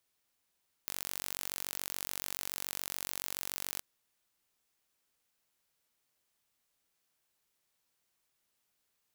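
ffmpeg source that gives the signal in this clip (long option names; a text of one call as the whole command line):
ffmpeg -f lavfi -i "aevalsrc='0.299*eq(mod(n,938),0)':duration=2.92:sample_rate=44100" out.wav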